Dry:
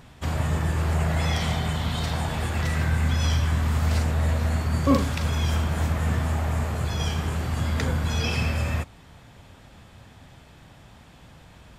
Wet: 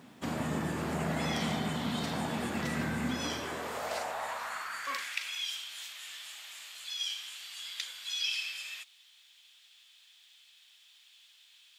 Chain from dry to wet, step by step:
bit reduction 11 bits
high-pass filter sweep 230 Hz → 3,300 Hz, 0:03.01–0:05.54
level −5.5 dB

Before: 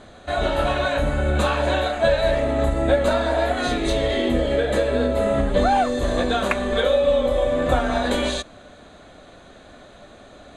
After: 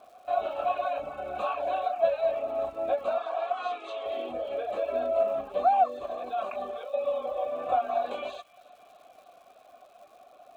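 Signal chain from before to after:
reverb reduction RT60 0.58 s
0:04.82–0:05.23: comb filter 3.1 ms, depth 93%
0:06.06–0:06.94: compressor whose output falls as the input rises −26 dBFS, ratio −1
formant filter a
surface crackle 330 per second −54 dBFS
0:03.18–0:04.06: loudspeaker in its box 480–8,800 Hz, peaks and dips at 600 Hz −7 dB, 1,200 Hz +8 dB, 3,200 Hz +4 dB
delay with a high-pass on its return 308 ms, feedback 75%, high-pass 1,800 Hz, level −21 dB
level +1.5 dB

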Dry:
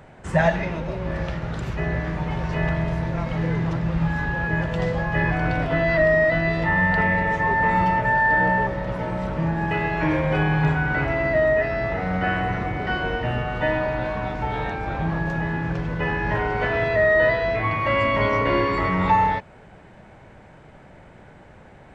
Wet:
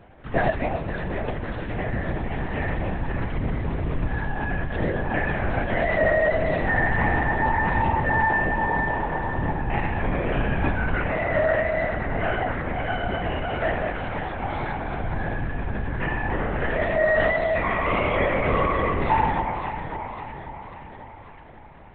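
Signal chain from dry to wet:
delay that swaps between a low-pass and a high-pass 272 ms, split 920 Hz, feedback 73%, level −5 dB
linear-prediction vocoder at 8 kHz whisper
level −3 dB

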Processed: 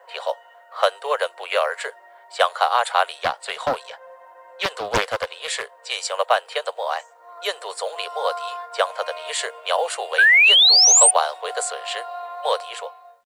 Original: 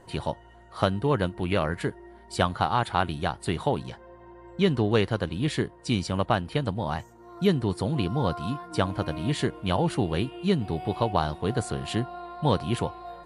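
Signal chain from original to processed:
fade-out on the ending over 0.86 s
low-pass that shuts in the quiet parts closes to 2,100 Hz, open at −20.5 dBFS
Butterworth high-pass 480 Hz 72 dB per octave
parametric band 7,800 Hz +11 dB 0.38 octaves
notch filter 880 Hz, Q 12
0:10.18–0:11.11: sound drawn into the spectrogram rise 1,500–9,300 Hz −20 dBFS
log-companded quantiser 8 bits
0:03.19–0:05.97: highs frequency-modulated by the lows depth 0.53 ms
level +7.5 dB

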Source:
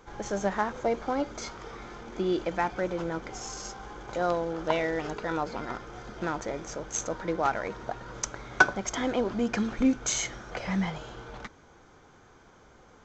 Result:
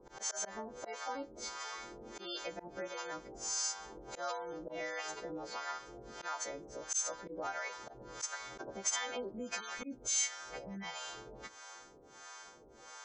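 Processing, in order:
every partial snapped to a pitch grid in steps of 2 semitones
high-shelf EQ 2,500 Hz −4.5 dB
gate on every frequency bin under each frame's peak −30 dB strong
volume swells 121 ms
two-band tremolo in antiphase 1.5 Hz, depth 100%, crossover 570 Hz
downward compressor 2 to 1, threshold −52 dBFS, peak gain reduction 13.5 dB
bass and treble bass −11 dB, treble +7 dB
level +6 dB

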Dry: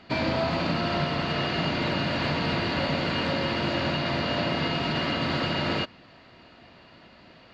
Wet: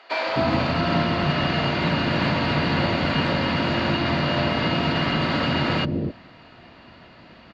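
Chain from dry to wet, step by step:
high-shelf EQ 3,500 Hz −7 dB
multiband delay without the direct sound highs, lows 260 ms, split 470 Hz
level +6 dB

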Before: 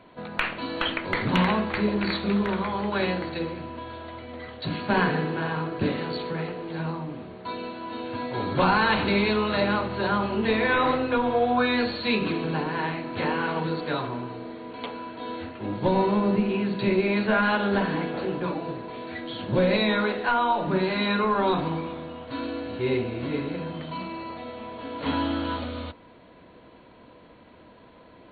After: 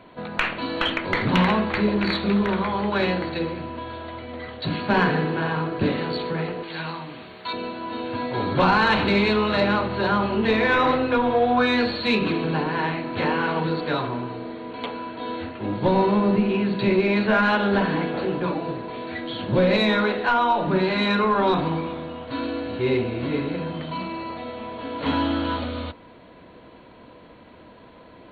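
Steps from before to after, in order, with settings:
0:06.63–0:07.53: tilt shelving filter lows −9 dB, about 1,100 Hz
in parallel at −5 dB: soft clipping −19 dBFS, distortion −15 dB

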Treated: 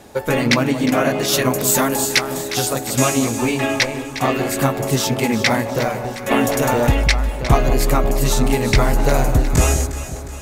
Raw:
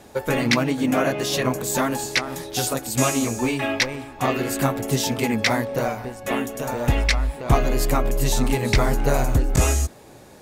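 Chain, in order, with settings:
0:01.28–0:02.34: high-shelf EQ 7,000 Hz +10.5 dB
delay that swaps between a low-pass and a high-pass 179 ms, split 1,000 Hz, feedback 73%, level −9.5 dB
0:06.31–0:06.92: envelope flattener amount 50%
level +3.5 dB

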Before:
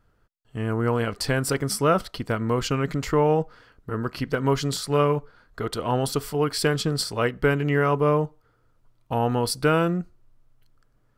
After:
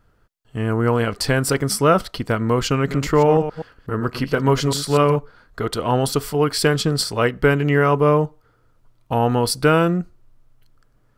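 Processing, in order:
0:02.76–0:05.16: delay that plays each chunk backwards 123 ms, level −10 dB
level +5 dB

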